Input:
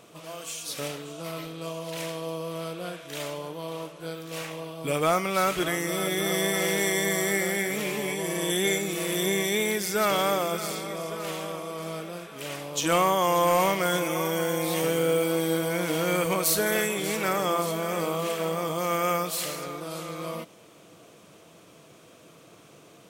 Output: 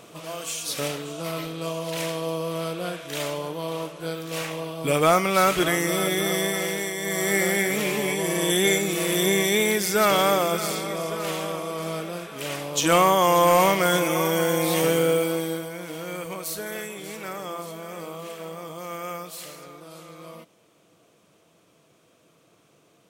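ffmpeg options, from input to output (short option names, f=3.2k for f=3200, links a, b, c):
-af "volume=15dB,afade=t=out:st=5.85:d=1.12:silence=0.298538,afade=t=in:st=6.97:d=0.45:silence=0.316228,afade=t=out:st=14.92:d=0.79:silence=0.237137"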